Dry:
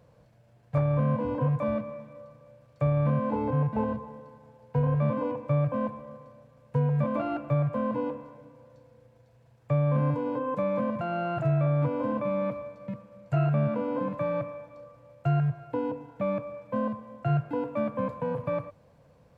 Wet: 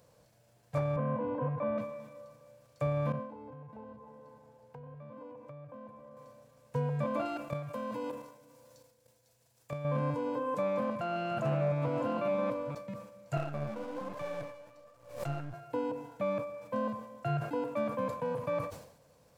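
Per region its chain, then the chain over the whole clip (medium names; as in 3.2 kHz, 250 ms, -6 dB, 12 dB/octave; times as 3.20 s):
0.96–1.78 s: band-pass 110–2100 Hz + distance through air 98 m
3.12–6.17 s: treble shelf 2.3 kHz -8.5 dB + compression 3:1, threshold -45 dBFS
7.25–9.85 s: treble shelf 3 kHz +10.5 dB + level held to a coarse grid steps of 11 dB
10.60–12.75 s: chunks repeated in reverse 560 ms, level -7 dB + loudspeaker Doppler distortion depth 0.12 ms
13.37–15.54 s: partial rectifier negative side -7 dB + flange 1.2 Hz, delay 0.8 ms, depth 9.9 ms, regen +44% + swell ahead of each attack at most 110 dB/s
whole clip: tone controls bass -6 dB, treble +13 dB; decay stretcher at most 81 dB/s; trim -3 dB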